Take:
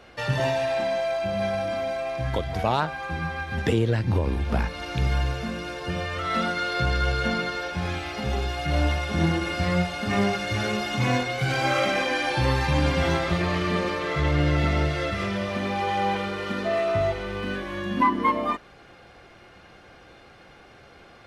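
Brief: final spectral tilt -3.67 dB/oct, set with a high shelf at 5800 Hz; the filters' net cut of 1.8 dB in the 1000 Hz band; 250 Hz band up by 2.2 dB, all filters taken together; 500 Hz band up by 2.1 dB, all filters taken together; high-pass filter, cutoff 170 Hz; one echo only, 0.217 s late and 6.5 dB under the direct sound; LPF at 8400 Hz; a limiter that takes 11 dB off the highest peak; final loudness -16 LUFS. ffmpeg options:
-af "highpass=170,lowpass=8.4k,equalizer=f=250:t=o:g=4,equalizer=f=500:t=o:g=3.5,equalizer=f=1k:t=o:g=-4.5,highshelf=f=5.8k:g=8,alimiter=limit=-20.5dB:level=0:latency=1,aecho=1:1:217:0.473,volume=12.5dB"

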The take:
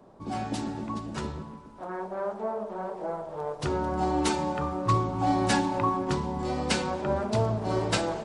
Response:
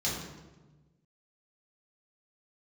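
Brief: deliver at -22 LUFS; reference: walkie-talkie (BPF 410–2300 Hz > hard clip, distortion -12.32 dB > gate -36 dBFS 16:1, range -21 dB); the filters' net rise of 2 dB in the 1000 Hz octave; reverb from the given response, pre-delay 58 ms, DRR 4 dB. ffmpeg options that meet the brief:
-filter_complex "[0:a]equalizer=f=1k:t=o:g=3,asplit=2[a][b];[1:a]atrim=start_sample=2205,adelay=58[c];[b][c]afir=irnorm=-1:irlink=0,volume=-11dB[d];[a][d]amix=inputs=2:normalize=0,highpass=410,lowpass=2.3k,asoftclip=type=hard:threshold=-23.5dB,agate=range=-21dB:threshold=-36dB:ratio=16,volume=7.5dB"

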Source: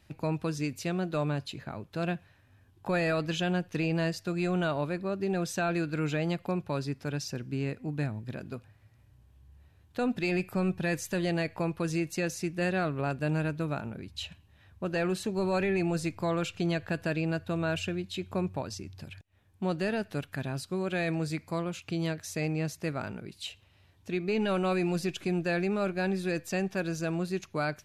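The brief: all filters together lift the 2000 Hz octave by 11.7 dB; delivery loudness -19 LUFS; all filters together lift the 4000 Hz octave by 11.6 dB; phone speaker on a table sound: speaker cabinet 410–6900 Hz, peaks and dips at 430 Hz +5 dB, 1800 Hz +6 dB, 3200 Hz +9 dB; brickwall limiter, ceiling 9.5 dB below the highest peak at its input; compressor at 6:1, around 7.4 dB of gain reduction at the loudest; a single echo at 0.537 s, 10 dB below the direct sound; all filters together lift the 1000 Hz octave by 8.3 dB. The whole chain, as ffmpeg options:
-af "equalizer=f=1k:t=o:g=9,equalizer=f=2k:t=o:g=5.5,equalizer=f=4k:t=o:g=6,acompressor=threshold=-29dB:ratio=6,alimiter=level_in=0.5dB:limit=-24dB:level=0:latency=1,volume=-0.5dB,highpass=f=410:w=0.5412,highpass=f=410:w=1.3066,equalizer=f=430:t=q:w=4:g=5,equalizer=f=1.8k:t=q:w=4:g=6,equalizer=f=3.2k:t=q:w=4:g=9,lowpass=f=6.9k:w=0.5412,lowpass=f=6.9k:w=1.3066,aecho=1:1:537:0.316,volume=15dB"

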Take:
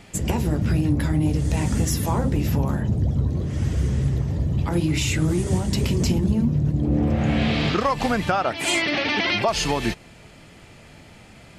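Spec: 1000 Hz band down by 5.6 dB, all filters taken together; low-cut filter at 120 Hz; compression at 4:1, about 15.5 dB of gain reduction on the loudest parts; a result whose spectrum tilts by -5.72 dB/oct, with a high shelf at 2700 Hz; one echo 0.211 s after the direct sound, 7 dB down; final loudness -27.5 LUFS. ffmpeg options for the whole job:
-af "highpass=120,equalizer=f=1k:t=o:g=-6.5,highshelf=f=2.7k:g=-7.5,acompressor=threshold=-38dB:ratio=4,aecho=1:1:211:0.447,volume=10.5dB"

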